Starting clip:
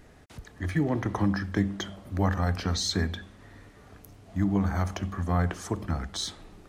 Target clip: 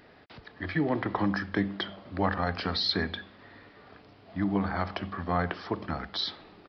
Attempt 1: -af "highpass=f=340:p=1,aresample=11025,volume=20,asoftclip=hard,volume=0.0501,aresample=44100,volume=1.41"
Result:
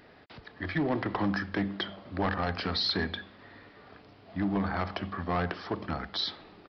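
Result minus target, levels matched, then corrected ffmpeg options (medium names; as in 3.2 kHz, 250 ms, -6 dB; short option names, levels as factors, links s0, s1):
overload inside the chain: distortion +27 dB
-af "highpass=f=340:p=1,aresample=11025,volume=7.94,asoftclip=hard,volume=0.126,aresample=44100,volume=1.41"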